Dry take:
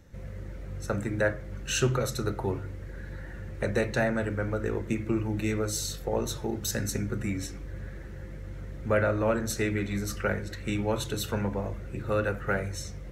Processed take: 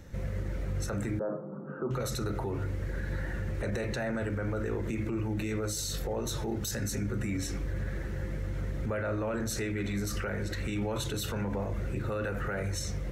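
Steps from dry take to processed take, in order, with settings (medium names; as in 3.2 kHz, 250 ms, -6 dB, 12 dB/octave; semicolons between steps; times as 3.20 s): 1.19–1.91 s: Chebyshev band-pass 150–1300 Hz, order 5; peak limiter -31 dBFS, peak gain reduction 17 dB; trim +6 dB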